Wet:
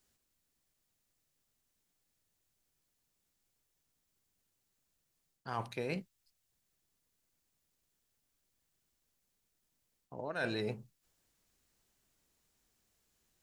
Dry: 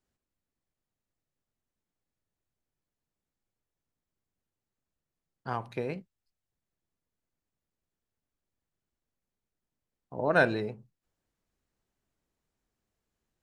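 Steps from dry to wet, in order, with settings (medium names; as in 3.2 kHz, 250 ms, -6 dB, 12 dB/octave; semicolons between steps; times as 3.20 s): treble shelf 2.5 kHz +11.5 dB; reverse; compression 12:1, threshold -35 dBFS, peak gain reduction 20 dB; reverse; trim +2 dB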